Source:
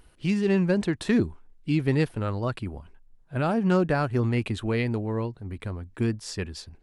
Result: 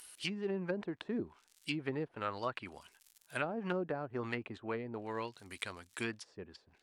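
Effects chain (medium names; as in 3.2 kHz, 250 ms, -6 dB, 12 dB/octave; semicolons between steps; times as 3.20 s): crackle 110 per s -56 dBFS; differentiator; low-pass that closes with the level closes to 490 Hz, closed at -41.5 dBFS; trim +14 dB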